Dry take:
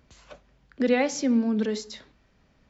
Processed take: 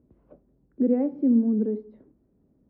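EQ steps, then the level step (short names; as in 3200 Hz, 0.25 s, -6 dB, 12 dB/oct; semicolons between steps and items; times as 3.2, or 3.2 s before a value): band-pass 330 Hz, Q 1.9; air absorption 380 m; tilt -3.5 dB/oct; 0.0 dB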